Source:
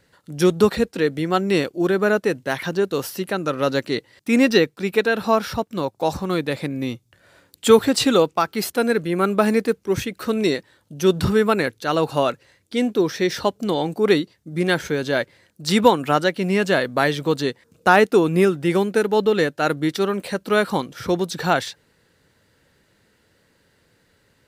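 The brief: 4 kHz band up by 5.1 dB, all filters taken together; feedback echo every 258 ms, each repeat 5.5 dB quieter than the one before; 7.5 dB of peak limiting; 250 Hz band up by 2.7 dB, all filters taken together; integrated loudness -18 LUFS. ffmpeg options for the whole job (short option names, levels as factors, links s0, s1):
-af "equalizer=f=250:t=o:g=3.5,equalizer=f=4000:t=o:g=6,alimiter=limit=0.422:level=0:latency=1,aecho=1:1:258|516|774|1032|1290|1548|1806:0.531|0.281|0.149|0.079|0.0419|0.0222|0.0118,volume=1.19"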